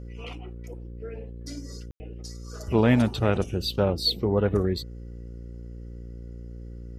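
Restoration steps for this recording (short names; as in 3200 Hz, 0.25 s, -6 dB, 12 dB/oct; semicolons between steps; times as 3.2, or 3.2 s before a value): de-hum 58.8 Hz, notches 9; room tone fill 1.91–2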